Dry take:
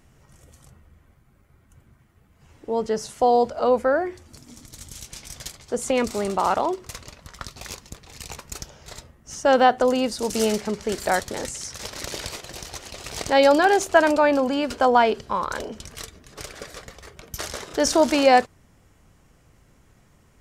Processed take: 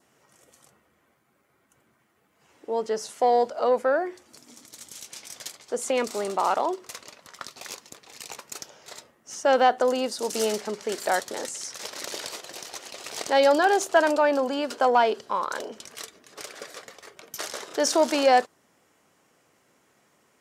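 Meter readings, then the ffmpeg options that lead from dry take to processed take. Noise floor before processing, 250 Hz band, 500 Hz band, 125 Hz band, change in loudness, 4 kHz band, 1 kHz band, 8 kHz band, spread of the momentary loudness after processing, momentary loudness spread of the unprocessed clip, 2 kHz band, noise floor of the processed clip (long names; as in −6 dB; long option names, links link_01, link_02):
−58 dBFS, −6.5 dB, −2.5 dB, below −10 dB, −3.0 dB, −2.0 dB, −2.5 dB, −1.5 dB, 21 LU, 22 LU, −3.0 dB, −67 dBFS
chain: -af "acontrast=41,highpass=320,adynamicequalizer=threshold=0.01:dfrequency=2300:dqfactor=3.1:tfrequency=2300:tqfactor=3.1:attack=5:release=100:ratio=0.375:range=2.5:mode=cutabove:tftype=bell,volume=-7dB"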